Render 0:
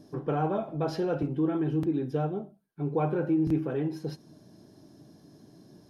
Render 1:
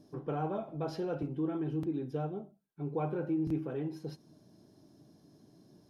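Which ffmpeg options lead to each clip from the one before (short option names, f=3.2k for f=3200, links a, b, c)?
-af "equalizer=f=1.7k:t=o:w=0.23:g=-3.5,volume=-6.5dB"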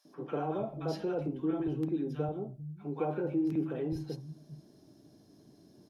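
-filter_complex "[0:a]acrossover=split=150|1000[a][b][c];[b]adelay=50[d];[a]adelay=450[e];[e][d][c]amix=inputs=3:normalize=0,volume=2.5dB"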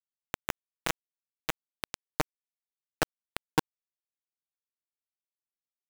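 -af "acrusher=bits=3:mix=0:aa=0.000001,volume=5.5dB"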